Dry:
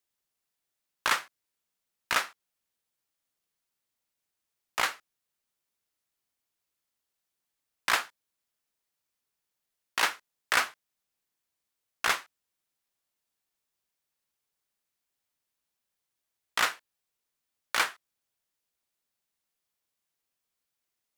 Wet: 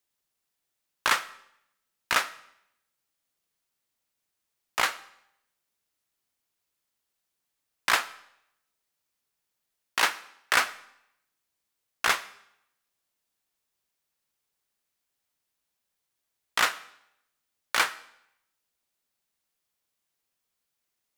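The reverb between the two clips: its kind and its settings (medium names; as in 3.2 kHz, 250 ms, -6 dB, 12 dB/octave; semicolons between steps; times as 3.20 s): algorithmic reverb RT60 0.77 s, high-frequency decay 0.95×, pre-delay 55 ms, DRR 20 dB; trim +2.5 dB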